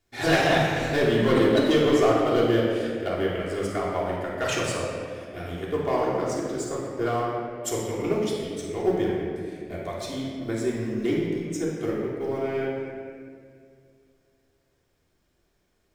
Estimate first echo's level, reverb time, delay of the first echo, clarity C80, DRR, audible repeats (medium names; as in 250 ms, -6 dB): no echo, 2.2 s, no echo, 1.0 dB, -6.5 dB, no echo